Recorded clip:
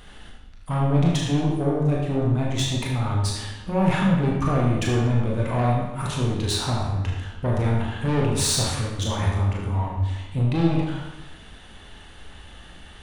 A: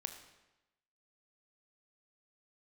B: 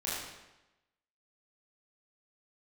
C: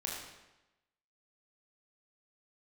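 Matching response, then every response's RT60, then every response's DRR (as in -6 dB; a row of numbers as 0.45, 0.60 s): C; 1.0, 1.0, 1.0 s; 6.5, -8.5, -3.0 dB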